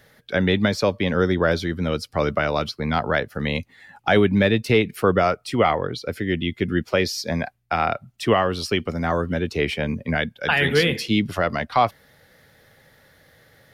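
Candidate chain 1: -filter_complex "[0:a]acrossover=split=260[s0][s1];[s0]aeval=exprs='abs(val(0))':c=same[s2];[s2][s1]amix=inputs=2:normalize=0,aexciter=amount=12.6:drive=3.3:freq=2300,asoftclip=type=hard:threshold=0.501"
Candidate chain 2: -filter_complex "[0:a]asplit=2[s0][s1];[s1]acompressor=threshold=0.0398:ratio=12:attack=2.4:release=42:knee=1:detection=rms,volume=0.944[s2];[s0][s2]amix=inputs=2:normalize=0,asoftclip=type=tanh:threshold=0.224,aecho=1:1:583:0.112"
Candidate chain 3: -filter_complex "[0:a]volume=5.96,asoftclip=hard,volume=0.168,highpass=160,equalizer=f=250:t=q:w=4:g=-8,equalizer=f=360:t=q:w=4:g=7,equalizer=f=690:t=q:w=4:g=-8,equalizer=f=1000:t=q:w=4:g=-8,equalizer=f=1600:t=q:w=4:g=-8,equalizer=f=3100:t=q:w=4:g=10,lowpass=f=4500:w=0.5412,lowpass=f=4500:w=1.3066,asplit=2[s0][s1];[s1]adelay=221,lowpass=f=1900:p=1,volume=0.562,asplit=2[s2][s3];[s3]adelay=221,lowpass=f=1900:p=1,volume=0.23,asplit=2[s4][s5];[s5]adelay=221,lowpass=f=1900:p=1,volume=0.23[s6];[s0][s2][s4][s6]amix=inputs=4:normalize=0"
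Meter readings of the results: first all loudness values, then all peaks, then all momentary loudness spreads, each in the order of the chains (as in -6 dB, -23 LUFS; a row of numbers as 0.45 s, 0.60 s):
-14.0 LUFS, -22.5 LUFS, -23.0 LUFS; -6.0 dBFS, -12.0 dBFS, -7.0 dBFS; 10 LU, 6 LU, 8 LU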